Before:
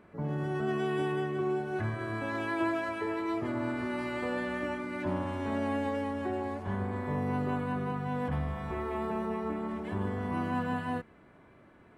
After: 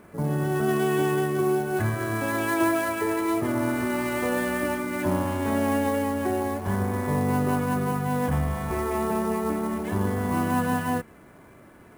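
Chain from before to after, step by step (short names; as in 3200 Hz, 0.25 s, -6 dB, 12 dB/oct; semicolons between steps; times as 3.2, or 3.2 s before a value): sample-rate reducer 11000 Hz, jitter 20%; gain +7.5 dB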